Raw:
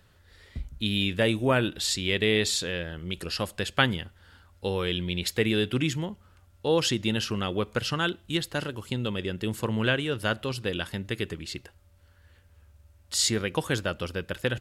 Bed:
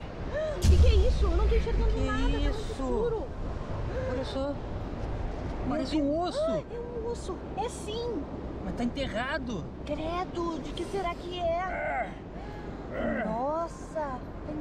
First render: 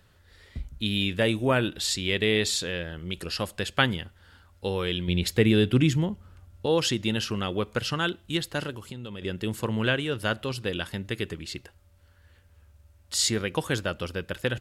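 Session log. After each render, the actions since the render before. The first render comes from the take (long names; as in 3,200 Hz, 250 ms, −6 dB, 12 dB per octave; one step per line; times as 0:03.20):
0:05.08–0:06.66: low-shelf EQ 380 Hz +8 dB
0:08.71–0:09.22: downward compressor 4 to 1, threshold −35 dBFS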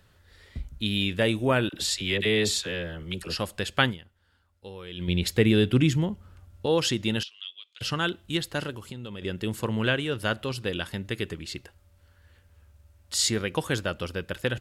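0:01.69–0:03.36: all-pass dispersion lows, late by 43 ms, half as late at 820 Hz
0:03.89–0:05.02: duck −13 dB, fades 0.40 s exponential
0:07.23–0:07.81: four-pole ladder band-pass 3,600 Hz, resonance 70%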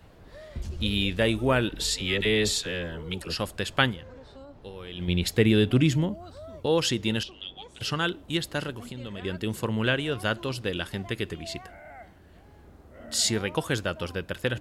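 mix in bed −15 dB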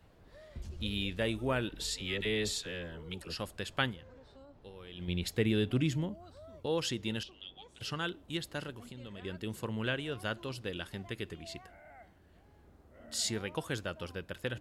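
level −9 dB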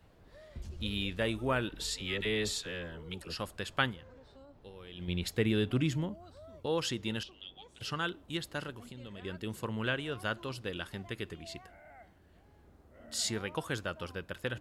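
dynamic equaliser 1,200 Hz, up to +4 dB, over −52 dBFS, Q 1.5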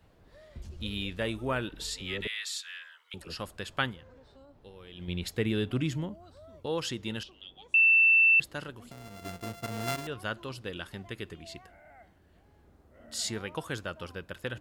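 0:02.27–0:03.14: high-pass filter 1,300 Hz 24 dB per octave
0:07.74–0:08.40: beep over 2,670 Hz −17.5 dBFS
0:08.91–0:10.07: samples sorted by size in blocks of 64 samples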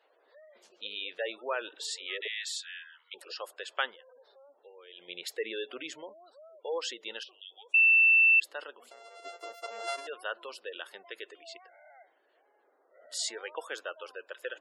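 Chebyshev high-pass filter 470 Hz, order 3
gate on every frequency bin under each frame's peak −20 dB strong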